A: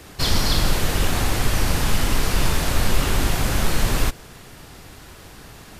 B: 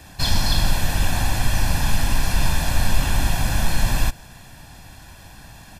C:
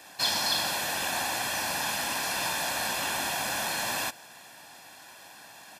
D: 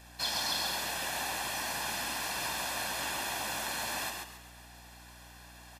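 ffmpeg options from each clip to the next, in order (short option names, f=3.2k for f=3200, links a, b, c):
-af "aecho=1:1:1.2:0.67,volume=-3dB"
-af "highpass=420,volume=-2dB"
-filter_complex "[0:a]asplit=5[a][b][c][d][e];[b]adelay=135,afreqshift=57,volume=-4dB[f];[c]adelay=270,afreqshift=114,volume=-13.9dB[g];[d]adelay=405,afreqshift=171,volume=-23.8dB[h];[e]adelay=540,afreqshift=228,volume=-33.7dB[i];[a][f][g][h][i]amix=inputs=5:normalize=0,aeval=exprs='val(0)+0.00398*(sin(2*PI*60*n/s)+sin(2*PI*2*60*n/s)/2+sin(2*PI*3*60*n/s)/3+sin(2*PI*4*60*n/s)/4+sin(2*PI*5*60*n/s)/5)':c=same,volume=-6.5dB"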